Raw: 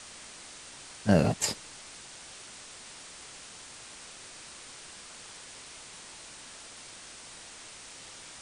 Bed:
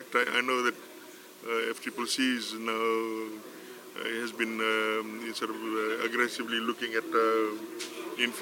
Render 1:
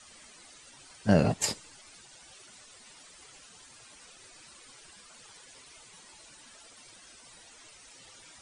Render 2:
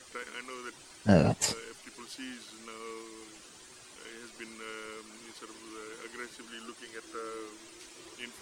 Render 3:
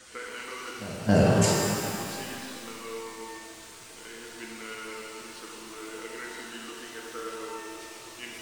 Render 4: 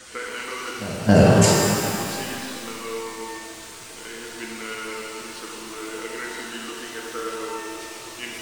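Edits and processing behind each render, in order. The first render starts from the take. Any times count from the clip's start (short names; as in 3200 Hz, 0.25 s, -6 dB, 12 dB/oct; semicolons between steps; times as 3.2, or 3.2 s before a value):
denoiser 13 dB, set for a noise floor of -48 dBFS
add bed -15.5 dB
pre-echo 0.273 s -18.5 dB; shimmer reverb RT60 2.3 s, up +12 st, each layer -8 dB, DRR -2.5 dB
gain +7 dB; limiter -2 dBFS, peak gain reduction 1.5 dB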